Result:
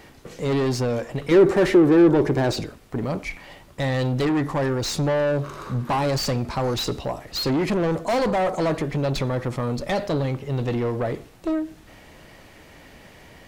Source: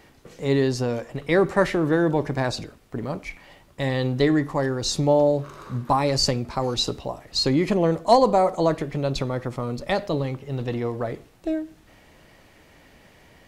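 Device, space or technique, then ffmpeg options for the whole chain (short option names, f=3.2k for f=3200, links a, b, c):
saturation between pre-emphasis and de-emphasis: -filter_complex "[0:a]highshelf=f=3.7k:g=10.5,asoftclip=type=tanh:threshold=-24dB,highshelf=f=3.7k:g=-10.5,asettb=1/sr,asplit=3[a][b][c];[a]atrim=end=1.314[d];[b]atrim=start=1.31:end=2.61,asetpts=PTS-STARTPTS,afade=t=in:d=0.004:c=qsin,afade=t=out:st=1.296:d=0.004:c=qsin,equalizer=f=370:w=2.1:g=11[e];[c]atrim=start=2.606[f];[d][e]acrossfade=d=0.004:c1=hsin:c2=qsin[g];[g][f]acrossfade=d=0.004:c1=qsin:c2=hsin,volume=5.5dB"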